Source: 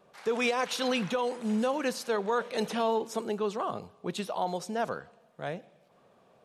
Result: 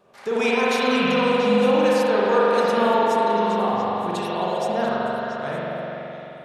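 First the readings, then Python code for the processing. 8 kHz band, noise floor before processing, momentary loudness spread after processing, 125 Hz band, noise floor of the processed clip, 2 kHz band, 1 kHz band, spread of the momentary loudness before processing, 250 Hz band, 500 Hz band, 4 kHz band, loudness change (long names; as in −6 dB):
+2.5 dB, −63 dBFS, 10 LU, +9.5 dB, −39 dBFS, +10.5 dB, +11.5 dB, 10 LU, +10.0 dB, +11.0 dB, +8.0 dB, +10.5 dB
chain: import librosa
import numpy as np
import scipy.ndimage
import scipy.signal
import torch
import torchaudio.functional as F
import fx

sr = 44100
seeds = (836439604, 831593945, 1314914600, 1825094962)

y = fx.echo_stepped(x, sr, ms=228, hz=620.0, octaves=1.4, feedback_pct=70, wet_db=-3.0)
y = fx.rev_spring(y, sr, rt60_s=3.5, pass_ms=(43,), chirp_ms=50, drr_db=-7.0)
y = F.gain(torch.from_numpy(y), 2.0).numpy()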